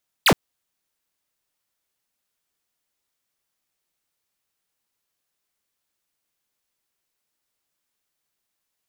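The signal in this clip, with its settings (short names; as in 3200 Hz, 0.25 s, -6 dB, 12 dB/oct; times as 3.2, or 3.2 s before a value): laser zap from 5000 Hz, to 110 Hz, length 0.07 s square, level -14 dB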